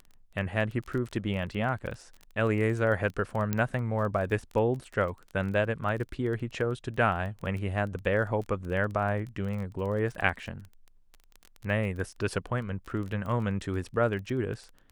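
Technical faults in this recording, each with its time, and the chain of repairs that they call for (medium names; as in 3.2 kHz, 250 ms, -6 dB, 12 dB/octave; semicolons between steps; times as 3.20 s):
crackle 21 per s -35 dBFS
3.53 s: pop -14 dBFS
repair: de-click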